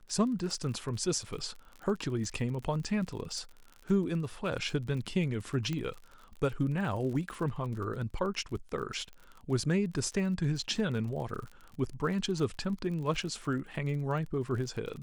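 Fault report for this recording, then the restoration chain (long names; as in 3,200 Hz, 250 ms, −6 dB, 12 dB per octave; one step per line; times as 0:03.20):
surface crackle 41 per second −39 dBFS
0:05.73: click −22 dBFS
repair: click removal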